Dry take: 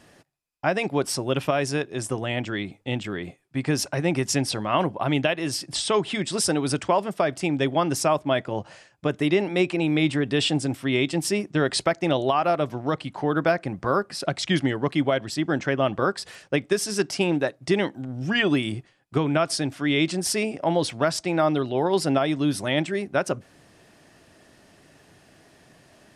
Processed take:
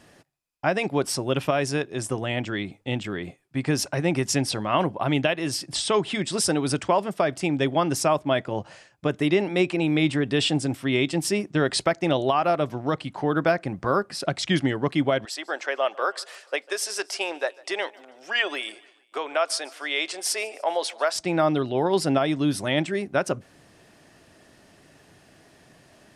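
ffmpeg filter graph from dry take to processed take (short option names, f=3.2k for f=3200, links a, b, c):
-filter_complex "[0:a]asettb=1/sr,asplit=3[a][b][c];[a]atrim=end=15.254[d];[b]atrim=start=15.25:end=21.16,asetpts=PTS-STARTPTS,afade=t=in:d=0.004:c=qsin,afade=t=out:st=5.906:d=0.004:c=qsin,highpass=f=500:w=0.5412,highpass=f=500:w=1.3066,aecho=1:1:147|294|441:0.0668|0.0348|0.0181,atrim=end_sample=260631[e];[c]atrim=start=21.156[f];[d][e]acrossfade=d=0.004:c1=hsin:c2=qsin[g];[g][f]acrossfade=d=0.004:c1=qsin:c2=hsin"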